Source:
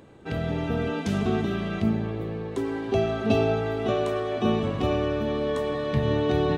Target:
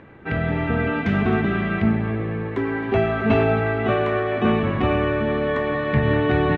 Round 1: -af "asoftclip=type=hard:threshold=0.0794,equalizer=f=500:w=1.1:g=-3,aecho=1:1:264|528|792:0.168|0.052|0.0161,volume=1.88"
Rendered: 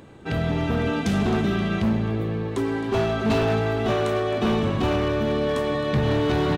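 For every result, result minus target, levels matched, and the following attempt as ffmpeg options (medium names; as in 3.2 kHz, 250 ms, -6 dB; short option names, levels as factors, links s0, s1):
hard clipper: distortion +12 dB; 2 kHz band -3.5 dB
-af "asoftclip=type=hard:threshold=0.168,equalizer=f=500:w=1.1:g=-3,aecho=1:1:264|528|792:0.168|0.052|0.0161,volume=1.88"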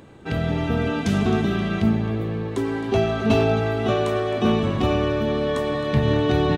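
2 kHz band -4.5 dB
-af "asoftclip=type=hard:threshold=0.168,lowpass=f=2000:t=q:w=2.2,equalizer=f=500:w=1.1:g=-3,aecho=1:1:264|528|792:0.168|0.052|0.0161,volume=1.88"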